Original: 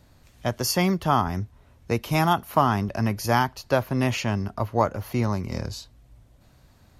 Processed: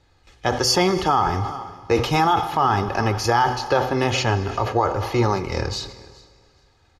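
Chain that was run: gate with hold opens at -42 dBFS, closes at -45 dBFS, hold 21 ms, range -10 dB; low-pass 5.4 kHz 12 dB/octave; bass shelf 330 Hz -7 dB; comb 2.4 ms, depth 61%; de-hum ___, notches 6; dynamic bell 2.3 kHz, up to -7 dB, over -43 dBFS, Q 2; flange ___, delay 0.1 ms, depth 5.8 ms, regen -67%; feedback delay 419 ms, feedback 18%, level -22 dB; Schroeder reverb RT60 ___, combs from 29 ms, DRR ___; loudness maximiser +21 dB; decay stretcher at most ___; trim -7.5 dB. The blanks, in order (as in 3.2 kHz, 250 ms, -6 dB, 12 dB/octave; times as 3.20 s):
125.7 Hz, 1.2 Hz, 2 s, 14.5 dB, 89 dB/s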